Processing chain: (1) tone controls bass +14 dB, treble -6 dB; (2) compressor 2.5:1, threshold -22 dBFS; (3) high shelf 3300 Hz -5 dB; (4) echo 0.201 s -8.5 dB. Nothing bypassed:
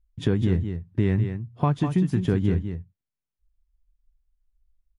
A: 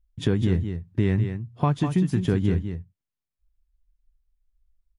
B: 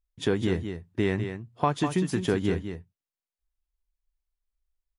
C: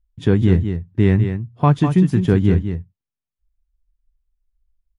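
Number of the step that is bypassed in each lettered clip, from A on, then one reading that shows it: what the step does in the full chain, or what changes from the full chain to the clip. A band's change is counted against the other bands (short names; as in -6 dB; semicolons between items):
3, 4 kHz band +2.5 dB; 1, 125 Hz band -11.0 dB; 2, mean gain reduction 5.5 dB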